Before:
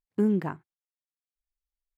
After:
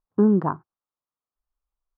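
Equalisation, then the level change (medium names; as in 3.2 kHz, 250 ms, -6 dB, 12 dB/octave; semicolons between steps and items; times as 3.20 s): distance through air 120 m; resonant high shelf 1.6 kHz -10.5 dB, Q 3; +6.0 dB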